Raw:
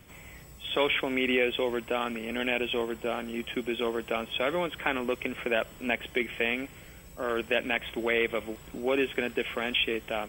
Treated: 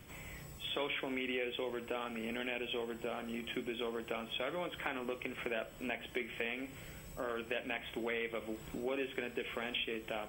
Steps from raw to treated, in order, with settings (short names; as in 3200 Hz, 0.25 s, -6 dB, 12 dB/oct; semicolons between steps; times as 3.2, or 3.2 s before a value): compressor 2.5:1, threshold -38 dBFS, peak gain reduction 11.5 dB; on a send: reverb RT60 0.40 s, pre-delay 11 ms, DRR 10 dB; on the sum: gain -1.5 dB